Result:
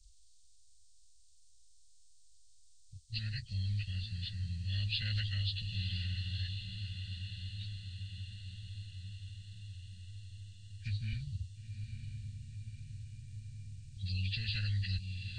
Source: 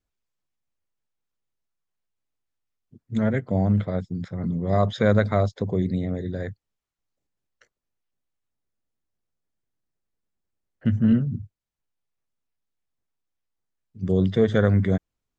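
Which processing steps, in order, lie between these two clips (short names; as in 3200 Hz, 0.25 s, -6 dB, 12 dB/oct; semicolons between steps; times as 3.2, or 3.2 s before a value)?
nonlinear frequency compression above 1600 Hz 1.5:1; inverse Chebyshev band-stop 250–1200 Hz, stop band 70 dB; diffused feedback echo 0.955 s, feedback 60%, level -11 dB; spectral compressor 2:1; gain +6 dB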